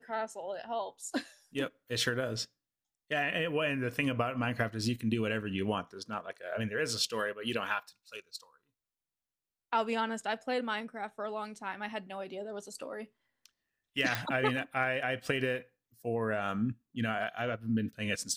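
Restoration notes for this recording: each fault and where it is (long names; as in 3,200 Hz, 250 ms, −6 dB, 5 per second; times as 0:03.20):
0:14.15: click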